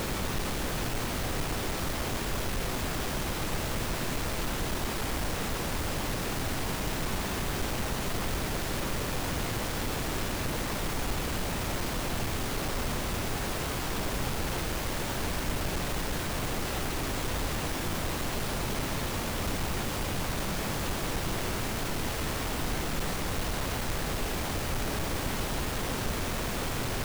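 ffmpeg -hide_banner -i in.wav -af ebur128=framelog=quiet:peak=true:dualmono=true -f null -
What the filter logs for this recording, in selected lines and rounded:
Integrated loudness:
  I:         -29.0 LUFS
  Threshold: -39.0 LUFS
Loudness range:
  LRA:         0.2 LU
  Threshold: -49.0 LUFS
  LRA low:   -29.1 LUFS
  LRA high:  -28.9 LUFS
True peak:
  Peak:      -20.0 dBFS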